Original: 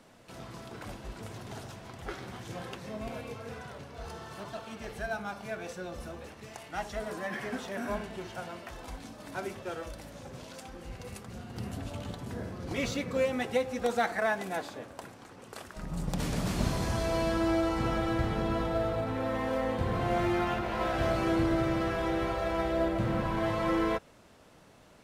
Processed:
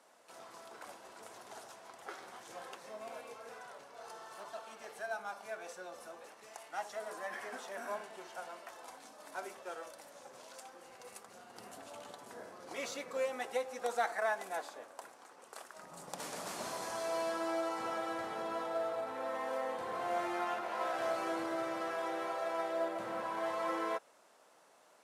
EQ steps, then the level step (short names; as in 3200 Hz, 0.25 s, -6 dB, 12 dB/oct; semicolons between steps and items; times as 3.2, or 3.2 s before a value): HPF 810 Hz 12 dB/oct; LPF 11000 Hz 12 dB/oct; bell 2900 Hz -11.5 dB 2.7 oct; +3.5 dB